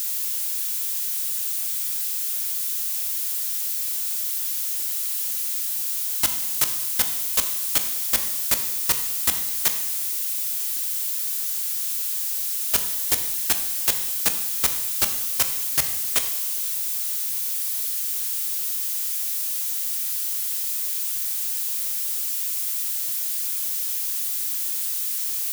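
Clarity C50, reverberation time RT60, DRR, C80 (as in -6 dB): 9.0 dB, 0.95 s, 6.5 dB, 11.0 dB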